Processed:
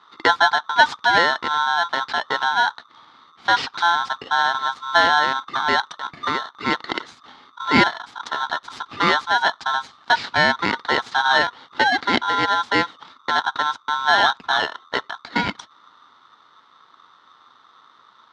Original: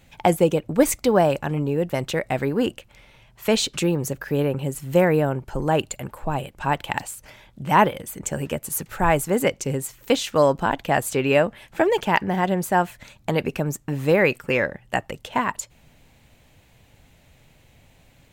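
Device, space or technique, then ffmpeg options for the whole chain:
ring modulator pedal into a guitar cabinet: -af "aeval=exprs='val(0)*sgn(sin(2*PI*1200*n/s))':c=same,highpass=80,equalizer=f=250:t=q:w=4:g=5,equalizer=f=600:t=q:w=4:g=-6,equalizer=f=900:t=q:w=4:g=7,equalizer=f=1.4k:t=q:w=4:g=4,equalizer=f=2.6k:t=q:w=4:g=-6,equalizer=f=3.8k:t=q:w=4:g=4,lowpass=f=4.4k:w=0.5412,lowpass=f=4.4k:w=1.3066"

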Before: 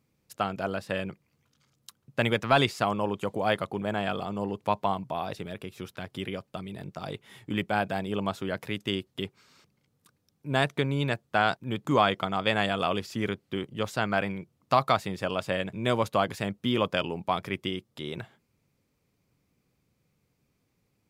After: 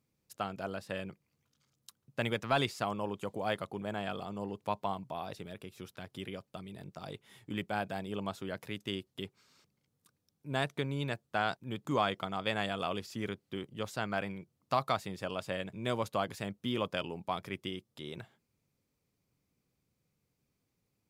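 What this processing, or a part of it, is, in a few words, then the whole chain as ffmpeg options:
exciter from parts: -filter_complex "[0:a]asplit=2[a][b];[b]highpass=3.1k,asoftclip=type=tanh:threshold=-31.5dB,volume=-7dB[c];[a][c]amix=inputs=2:normalize=0,volume=-7.5dB"

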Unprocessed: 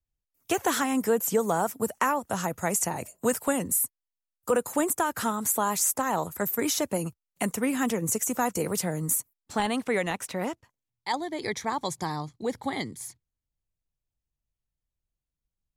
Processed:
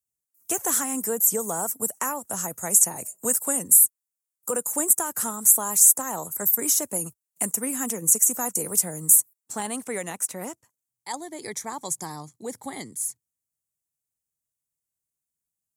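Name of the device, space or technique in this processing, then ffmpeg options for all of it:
budget condenser microphone: -af "highpass=120,highshelf=f=5.6k:t=q:w=1.5:g=13.5,volume=-4.5dB"

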